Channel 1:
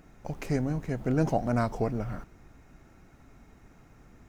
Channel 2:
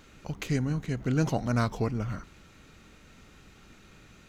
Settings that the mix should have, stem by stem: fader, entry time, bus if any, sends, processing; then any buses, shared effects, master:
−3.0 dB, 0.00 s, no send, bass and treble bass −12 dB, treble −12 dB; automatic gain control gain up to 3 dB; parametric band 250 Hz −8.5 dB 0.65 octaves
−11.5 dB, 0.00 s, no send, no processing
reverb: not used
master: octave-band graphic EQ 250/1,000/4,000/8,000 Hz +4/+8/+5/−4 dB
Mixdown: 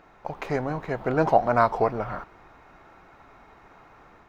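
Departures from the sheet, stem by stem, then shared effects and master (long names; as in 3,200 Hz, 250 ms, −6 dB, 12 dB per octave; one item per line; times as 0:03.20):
stem 1 −3.0 dB → +3.5 dB
stem 2 −11.5 dB → −20.5 dB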